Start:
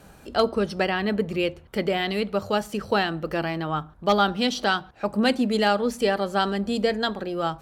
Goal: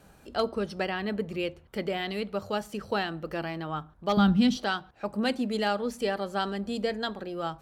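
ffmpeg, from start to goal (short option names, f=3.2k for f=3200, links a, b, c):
-filter_complex "[0:a]asettb=1/sr,asplit=3[a][b][c];[a]atrim=end=4.174[d];[b]atrim=start=4.17:end=4.57,asetpts=PTS-STARTPTS,afade=t=in:d=0.004:c=qsin,afade=t=out:st=0.396:d=0.004:c=qsin,lowshelf=f=280:t=q:w=1.5:g=13[e];[c]atrim=start=4.566[f];[d][e]acrossfade=d=0.004:c1=hsin:c2=qsin[g];[g][f]acrossfade=d=0.004:c1=qsin:c2=hsin,volume=-6.5dB"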